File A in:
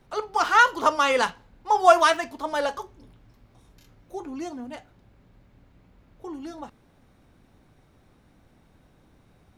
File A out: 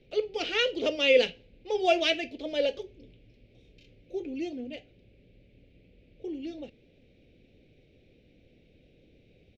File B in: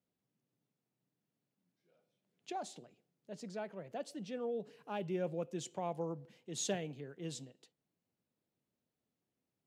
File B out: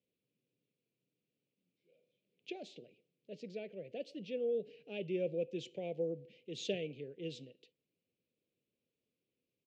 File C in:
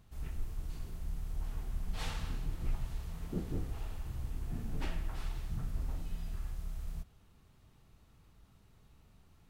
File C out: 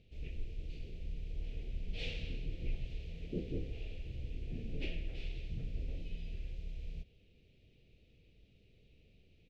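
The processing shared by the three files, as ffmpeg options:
ffmpeg -i in.wav -af "firequalizer=gain_entry='entry(200,0);entry(500,8);entry(1000,-29);entry(2400,9);entry(9700,-24)':delay=0.05:min_phase=1,volume=-3dB" out.wav

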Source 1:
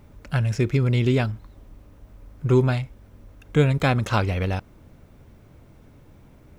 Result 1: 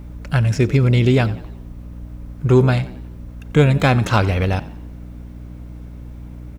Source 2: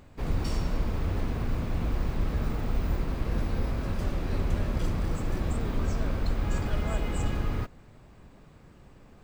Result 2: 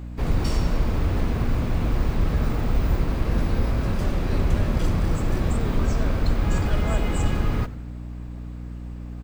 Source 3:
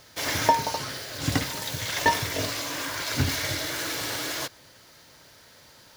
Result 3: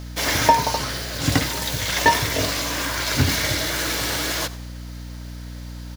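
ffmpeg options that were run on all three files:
ffmpeg -i in.wav -filter_complex "[0:a]acontrast=53,asplit=5[link_01][link_02][link_03][link_04][link_05];[link_02]adelay=90,afreqshift=64,volume=-18.5dB[link_06];[link_03]adelay=180,afreqshift=128,volume=-25.6dB[link_07];[link_04]adelay=270,afreqshift=192,volume=-32.8dB[link_08];[link_05]adelay=360,afreqshift=256,volume=-39.9dB[link_09];[link_01][link_06][link_07][link_08][link_09]amix=inputs=5:normalize=0,aeval=exprs='val(0)+0.0224*(sin(2*PI*60*n/s)+sin(2*PI*2*60*n/s)/2+sin(2*PI*3*60*n/s)/3+sin(2*PI*4*60*n/s)/4+sin(2*PI*5*60*n/s)/5)':channel_layout=same" out.wav

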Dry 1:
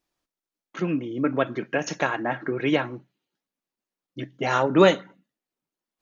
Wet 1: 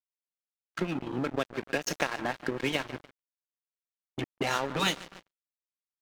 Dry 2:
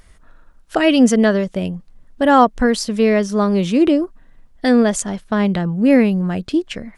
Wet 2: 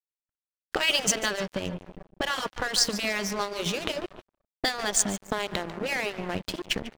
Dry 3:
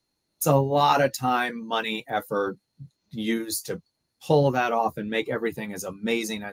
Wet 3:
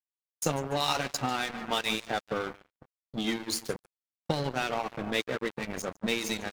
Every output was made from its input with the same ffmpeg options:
ffmpeg -i in.wav -filter_complex "[0:a]afftfilt=real='re*lt(hypot(re,im),1)':imag='im*lt(hypot(re,im),1)':win_size=1024:overlap=0.75,aecho=1:1:145|290|435|580|725:0.188|0.102|0.0549|0.0297|0.016,acrossover=split=8800[link_01][link_02];[link_02]acompressor=threshold=-57dB:ratio=4:attack=1:release=60[link_03];[link_01][link_03]amix=inputs=2:normalize=0,afftdn=noise_reduction=16:noise_floor=-47,acrossover=split=3100[link_04][link_05];[link_04]acompressor=threshold=-31dB:ratio=5[link_06];[link_06][link_05]amix=inputs=2:normalize=0,aeval=exprs='sgn(val(0))*max(abs(val(0))-0.0133,0)':channel_layout=same,agate=range=-33dB:threshold=-46dB:ratio=3:detection=peak,volume=6dB" out.wav

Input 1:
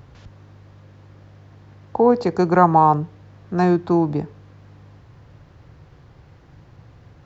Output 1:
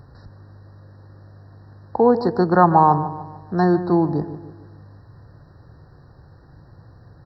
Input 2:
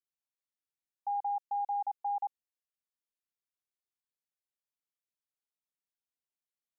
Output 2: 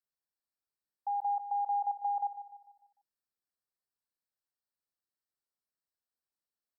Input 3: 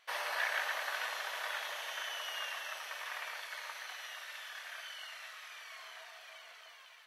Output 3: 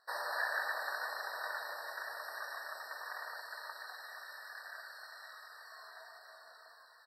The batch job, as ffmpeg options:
ffmpeg -i in.wav -filter_complex "[0:a]asplit=2[link_01][link_02];[link_02]adelay=149,lowpass=frequency=2000:poles=1,volume=-12dB,asplit=2[link_03][link_04];[link_04]adelay=149,lowpass=frequency=2000:poles=1,volume=0.47,asplit=2[link_05][link_06];[link_06]adelay=149,lowpass=frequency=2000:poles=1,volume=0.47,asplit=2[link_07][link_08];[link_08]adelay=149,lowpass=frequency=2000:poles=1,volume=0.47,asplit=2[link_09][link_10];[link_10]adelay=149,lowpass=frequency=2000:poles=1,volume=0.47[link_11];[link_03][link_05][link_07][link_09][link_11]amix=inputs=5:normalize=0[link_12];[link_01][link_12]amix=inputs=2:normalize=0,afftfilt=real='re*eq(mod(floor(b*sr/1024/1900),2),0)':imag='im*eq(mod(floor(b*sr/1024/1900),2),0)':win_size=1024:overlap=0.75" out.wav

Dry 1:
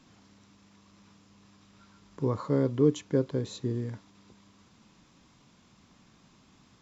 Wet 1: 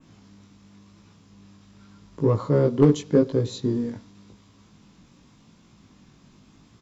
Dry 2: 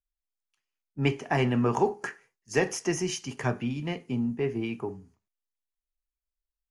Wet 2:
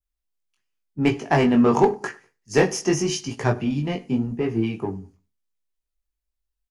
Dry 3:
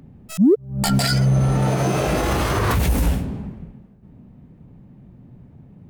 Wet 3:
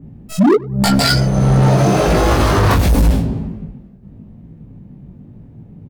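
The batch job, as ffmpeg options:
ffmpeg -i in.wav -filter_complex "[0:a]adynamicequalizer=threshold=0.00355:dfrequency=4600:dqfactor=1.3:tfrequency=4600:tqfactor=1.3:attack=5:release=100:ratio=0.375:range=3:mode=boostabove:tftype=bell,asplit=2[link_01][link_02];[link_02]adynamicsmooth=sensitivity=1.5:basefreq=580,volume=-1dB[link_03];[link_01][link_03]amix=inputs=2:normalize=0,flanger=delay=18:depth=3.2:speed=0.89,volume=13dB,asoftclip=hard,volume=-13dB,asplit=2[link_04][link_05];[link_05]adelay=98,lowpass=frequency=1800:poles=1,volume=-21.5dB,asplit=2[link_06][link_07];[link_07]adelay=98,lowpass=frequency=1800:poles=1,volume=0.33[link_08];[link_04][link_06][link_08]amix=inputs=3:normalize=0,volume=5.5dB" out.wav

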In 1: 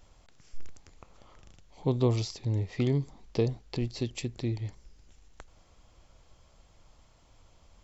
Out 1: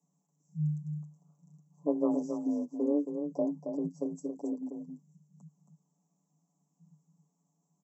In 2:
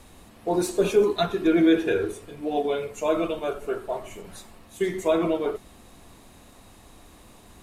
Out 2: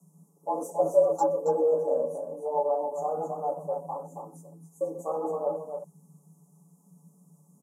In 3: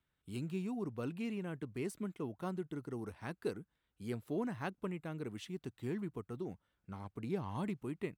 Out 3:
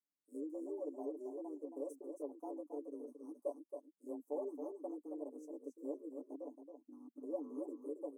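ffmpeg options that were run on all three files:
ffmpeg -i in.wav -filter_complex "[0:a]afwtdn=0.0224,highshelf=frequency=2100:gain=10,aecho=1:1:7.1:0.85,afreqshift=150,asuperstop=centerf=2600:order=12:qfactor=0.53,asplit=2[link_01][link_02];[link_02]aecho=0:1:273:0.447[link_03];[link_01][link_03]amix=inputs=2:normalize=0,volume=-6.5dB" out.wav

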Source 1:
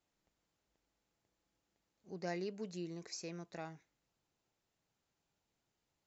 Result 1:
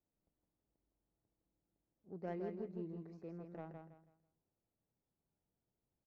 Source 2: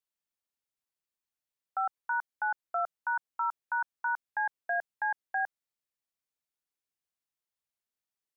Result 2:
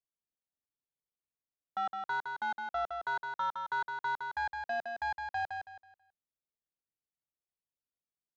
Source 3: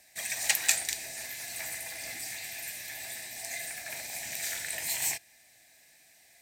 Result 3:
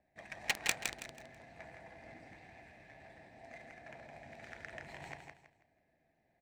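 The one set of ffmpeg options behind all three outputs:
ffmpeg -i in.wav -af "adynamicsmooth=sensitivity=1.5:basefreq=730,aecho=1:1:163|326|489|652:0.531|0.154|0.0446|0.0129,volume=-1.5dB" out.wav

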